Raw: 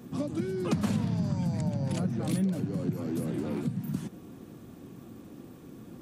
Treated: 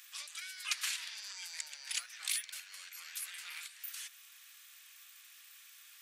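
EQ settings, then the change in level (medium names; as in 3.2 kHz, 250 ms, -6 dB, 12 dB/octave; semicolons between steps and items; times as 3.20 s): inverse Chebyshev high-pass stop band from 320 Hz, stop band 80 dB; +8.5 dB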